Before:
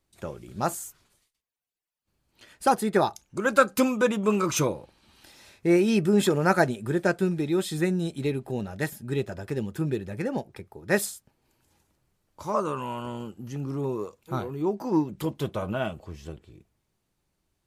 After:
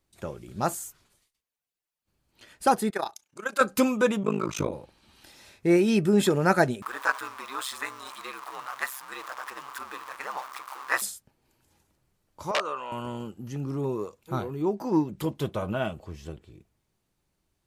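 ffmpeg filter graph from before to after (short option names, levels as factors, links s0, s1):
-filter_complex "[0:a]asettb=1/sr,asplit=3[s0][s1][s2];[s0]atrim=end=2.904[s3];[s1]atrim=start=2.9:end=3.61,asetpts=PTS-STARTPTS,afade=t=in:d=0.004:c=qsin,afade=t=out:st=0.706:d=0.004:c=qsin,highpass=f=970:p=1,tremolo=f=30:d=0.788[s4];[s2]atrim=start=3.606[s5];[s3][s4]acrossfade=d=0.004:c1=hsin:c2=qsin[s6];[s6][s5]acrossfade=d=0.004:c1=qsin:c2=hsin,asettb=1/sr,asplit=3[s7][s8][s9];[s7]atrim=end=4.234[s10];[s8]atrim=start=4.23:end=4.73,asetpts=PTS-STARTPTS,afade=t=in:d=0.004:c=qsin,afade=t=out:st=0.496:d=0.004:c=qsin,aemphasis=mode=reproduction:type=cd,tremolo=f=53:d=1[s11];[s9]atrim=start=4.726[s12];[s10][s11]acrossfade=d=0.004:c1=hsin:c2=qsin[s13];[s13][s12]acrossfade=d=0.004:c1=qsin:c2=hsin,asettb=1/sr,asplit=3[s14][s15][s16];[s14]atrim=end=6.824[s17];[s15]atrim=start=6.82:end=11.02,asetpts=PTS-STARTPTS,afade=t=in:d=0.004:c=qsin,afade=t=out:st=4.196:d=0.004:c=qsin,aeval=exprs='val(0)+0.5*0.0188*sgn(val(0))':c=same,highpass=f=1100:t=q:w=7.2,aeval=exprs='val(0)*sin(2*PI*66*n/s)':c=same[s18];[s16]atrim=start=11.016[s19];[s17][s18]acrossfade=d=0.004:c1=hsin:c2=qsin[s20];[s20][s19]acrossfade=d=0.004:c1=qsin:c2=hsin,asettb=1/sr,asplit=3[s21][s22][s23];[s21]atrim=end=12.514[s24];[s22]atrim=start=12.51:end=12.92,asetpts=PTS-STARTPTS,afade=t=in:d=0.004:c=qsin,afade=t=out:st=0.406:d=0.004:c=qsin,aecho=1:1:1.6:0.3,atrim=end_sample=18081,aeval=exprs='(mod(6.31*val(0)+1,2)-1)/6.31':c=same,highpass=530,lowpass=4900[s25];[s23]atrim=start=12.916[s26];[s24][s25]acrossfade=d=0.004:c1=hsin:c2=qsin[s27];[s27][s26]acrossfade=d=0.004:c1=qsin:c2=hsin"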